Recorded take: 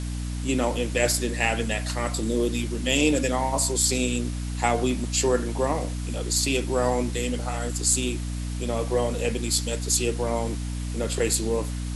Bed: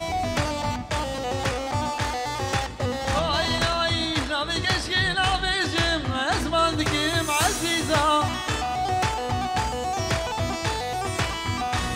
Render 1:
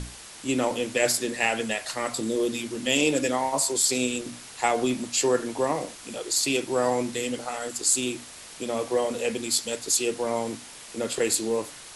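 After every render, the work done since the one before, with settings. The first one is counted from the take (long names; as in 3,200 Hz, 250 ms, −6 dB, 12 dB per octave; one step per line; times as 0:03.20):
mains-hum notches 60/120/180/240/300 Hz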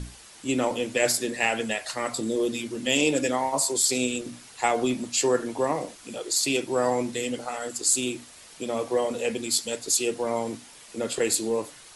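broadband denoise 6 dB, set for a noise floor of −44 dBFS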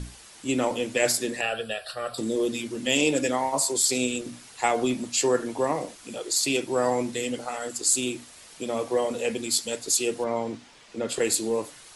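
0:01.41–0:02.18: phaser with its sweep stopped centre 1,400 Hz, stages 8
0:10.24–0:11.09: high-frequency loss of the air 96 metres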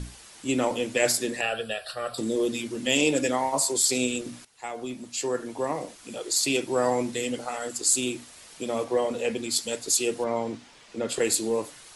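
0:04.45–0:06.37: fade in, from −16.5 dB
0:08.84–0:09.56: high-shelf EQ 7,100 Hz −7.5 dB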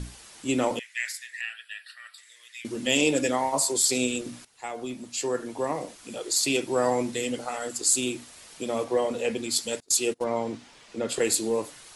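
0:00.79–0:02.65: four-pole ladder high-pass 1,800 Hz, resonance 75%
0:09.80–0:10.33: noise gate −30 dBFS, range −29 dB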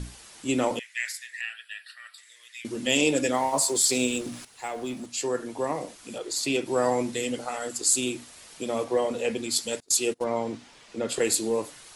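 0:03.34–0:05.06: mu-law and A-law mismatch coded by mu
0:06.18–0:06.66: high-shelf EQ 4,400 Hz −7.5 dB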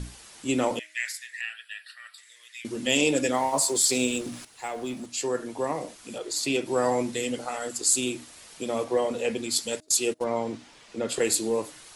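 hum removal 312.5 Hz, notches 2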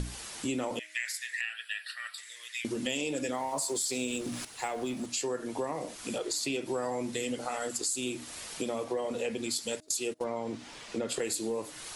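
in parallel at −0.5 dB: brickwall limiter −20.5 dBFS, peak gain reduction 11 dB
on the sum: downward compressor 4 to 1, threshold −32 dBFS, peak gain reduction 14 dB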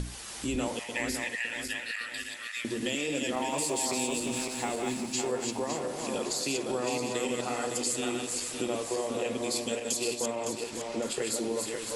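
feedback delay that plays each chunk backwards 280 ms, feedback 64%, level −3.5 dB
echo through a band-pass that steps 177 ms, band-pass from 930 Hz, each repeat 1.4 octaves, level −10.5 dB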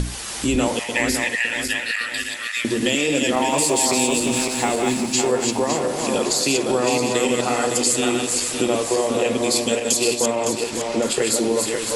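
level +11.5 dB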